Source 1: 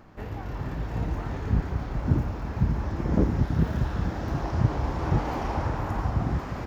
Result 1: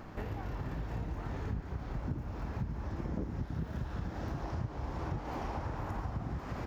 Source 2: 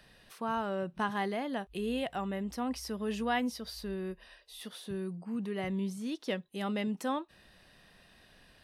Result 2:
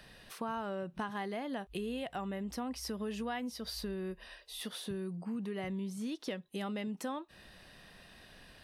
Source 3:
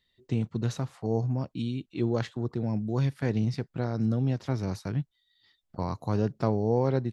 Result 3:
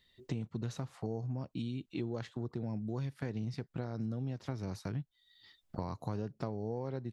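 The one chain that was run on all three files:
downward compressor 5 to 1, threshold −40 dBFS
level +4 dB

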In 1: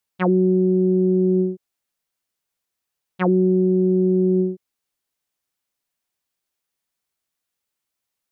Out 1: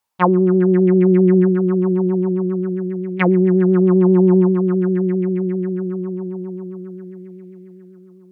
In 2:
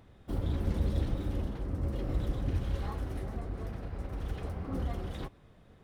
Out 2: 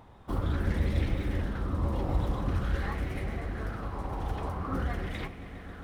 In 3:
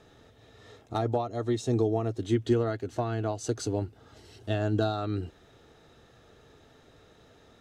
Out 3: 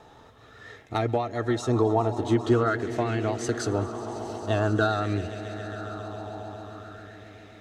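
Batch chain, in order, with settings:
echo that builds up and dies away 135 ms, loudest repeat 5, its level −18 dB
pitch vibrato 7.6 Hz 32 cents
auto-filter bell 0.47 Hz 890–2,200 Hz +13 dB
level +2 dB

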